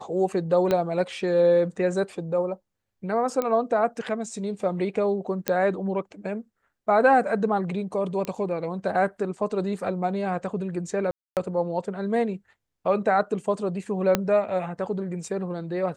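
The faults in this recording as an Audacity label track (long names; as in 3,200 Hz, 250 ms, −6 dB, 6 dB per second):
0.710000	0.710000	click −11 dBFS
3.420000	3.420000	click −13 dBFS
5.480000	5.480000	click −7 dBFS
8.250000	8.250000	click −16 dBFS
11.110000	11.370000	drop-out 258 ms
14.150000	14.150000	click −6 dBFS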